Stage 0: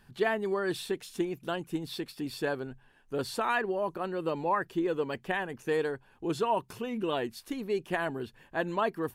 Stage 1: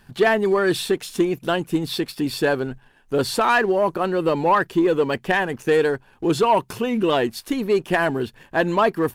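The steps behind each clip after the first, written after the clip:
leveller curve on the samples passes 1
level +8.5 dB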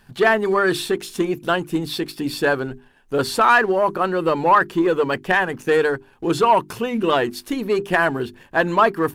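dynamic equaliser 1,300 Hz, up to +6 dB, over −33 dBFS, Q 1.5
mains-hum notches 50/100/150/200/250/300/350/400 Hz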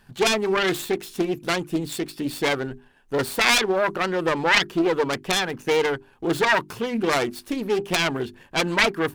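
phase distortion by the signal itself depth 0.45 ms
level −2.5 dB

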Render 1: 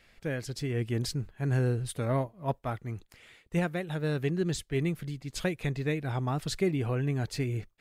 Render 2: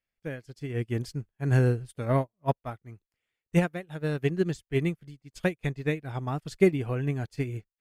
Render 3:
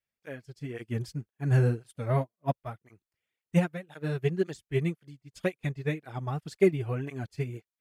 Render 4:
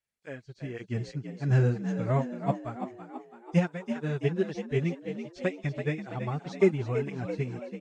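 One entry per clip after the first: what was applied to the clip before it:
notch filter 3,900 Hz, Q 12; expander for the loud parts 2.5 to 1, over −48 dBFS; level +8.5 dB
through-zero flanger with one copy inverted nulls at 1.9 Hz, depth 4.5 ms
hearing-aid frequency compression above 3,300 Hz 1.5 to 1; echo with shifted repeats 332 ms, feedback 51%, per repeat +59 Hz, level −9 dB

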